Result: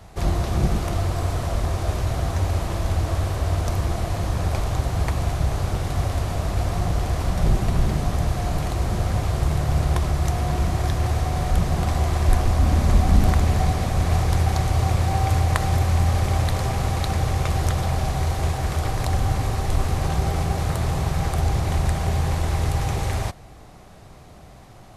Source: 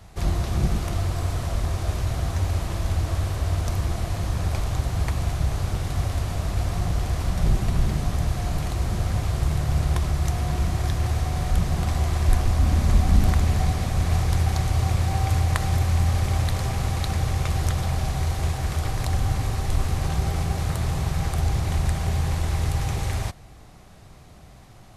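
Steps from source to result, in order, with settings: bell 580 Hz +4.5 dB 2.4 oct; gain +1 dB

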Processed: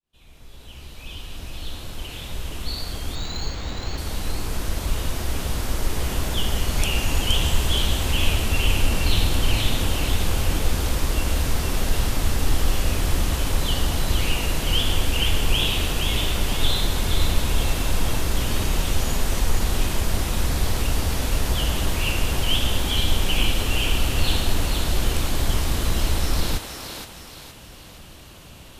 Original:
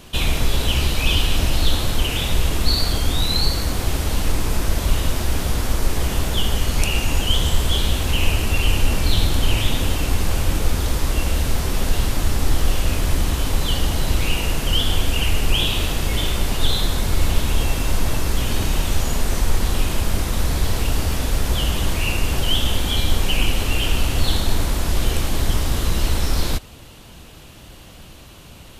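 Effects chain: opening faded in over 7.18 s; thinning echo 0.47 s, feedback 42%, high-pass 420 Hz, level -5 dB; 3.15–3.98 decimation joined by straight lines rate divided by 4×; gain -2.5 dB

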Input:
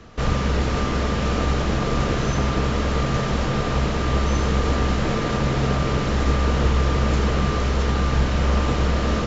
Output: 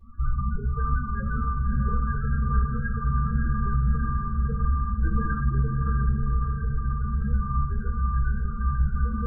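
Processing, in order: limiter -13.5 dBFS, peak gain reduction 5.5 dB; ladder low-pass 1700 Hz, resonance 70%; loudest bins only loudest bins 4; on a send: diffused feedback echo 0.643 s, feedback 49%, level -6 dB; on the sum: shoebox room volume 41 m³, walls mixed, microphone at 1.1 m; gain +4.5 dB

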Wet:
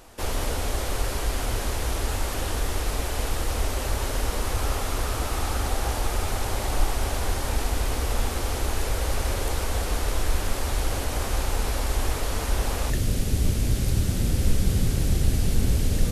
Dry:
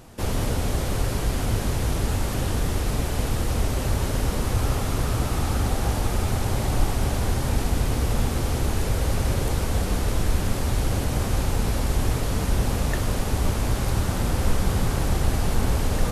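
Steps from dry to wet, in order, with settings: bell 150 Hz -14.5 dB 1.6 oct, from 12.9 s 980 Hz; gain +1 dB

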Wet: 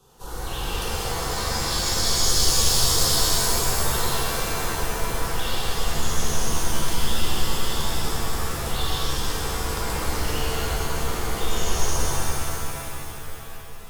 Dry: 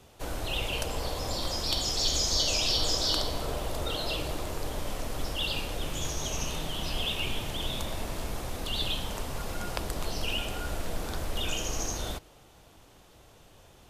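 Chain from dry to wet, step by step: fixed phaser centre 420 Hz, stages 8; shimmer reverb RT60 3.2 s, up +7 st, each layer -2 dB, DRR -8 dB; gain -1 dB

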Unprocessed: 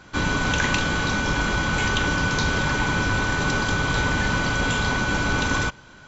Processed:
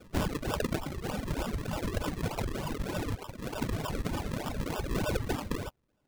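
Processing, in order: 3.14–3.61 tube stage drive 14 dB, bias 0.65; 4.91–5.33 graphic EQ 125/250/500/1000/2000/4000 Hz +5/-10/-11/+5/+8/-6 dB; reverb removal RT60 1.4 s; decimation with a swept rate 41×, swing 100% 3.3 Hz; reverb removal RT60 1.3 s; gain -5 dB

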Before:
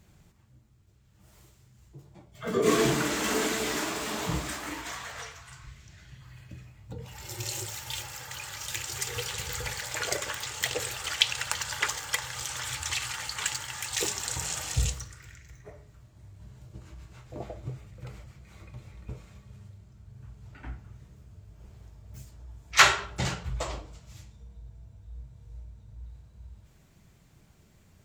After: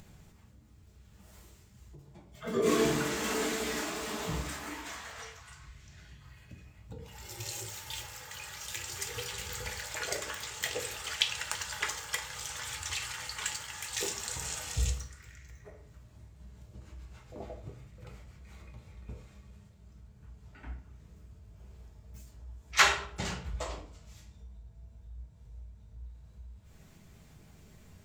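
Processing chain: upward compressor, threshold -42 dBFS; reverb RT60 0.45 s, pre-delay 5 ms, DRR 5 dB; gain -5.5 dB

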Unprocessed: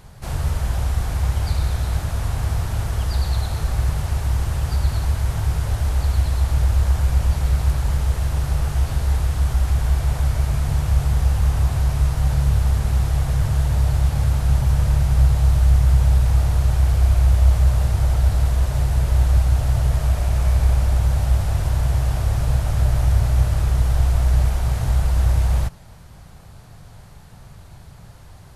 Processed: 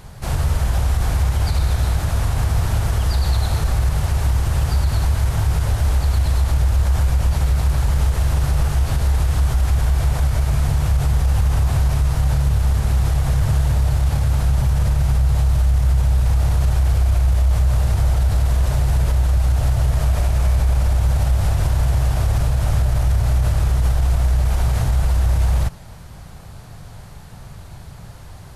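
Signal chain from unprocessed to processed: limiter -15 dBFS, peak gain reduction 9.5 dB; gain +5 dB

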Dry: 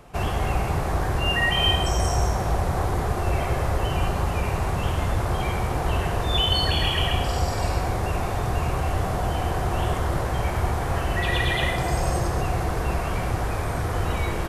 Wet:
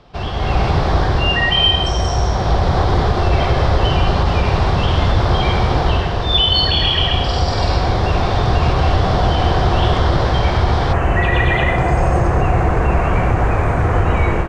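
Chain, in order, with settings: band shelf 4200 Hz +10 dB 1 oct, from 10.92 s -8.5 dB; AGC gain up to 11.5 dB; air absorption 150 m; maximiser +4.5 dB; gain -3.5 dB

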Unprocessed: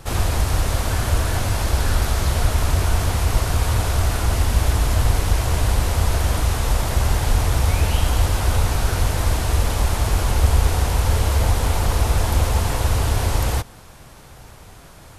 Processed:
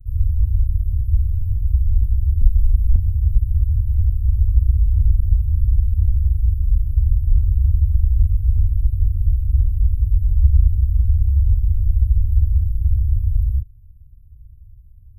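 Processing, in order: rattling part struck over -16 dBFS, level -22 dBFS; inverse Chebyshev band-stop 500–6100 Hz, stop band 80 dB; 2.41–2.96 comb 5 ms, depth 89%; gain +4 dB

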